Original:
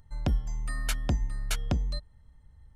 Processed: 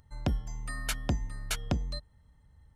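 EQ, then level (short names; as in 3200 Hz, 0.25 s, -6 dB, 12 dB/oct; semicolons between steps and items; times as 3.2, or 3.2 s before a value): HPF 71 Hz 6 dB/oct; 0.0 dB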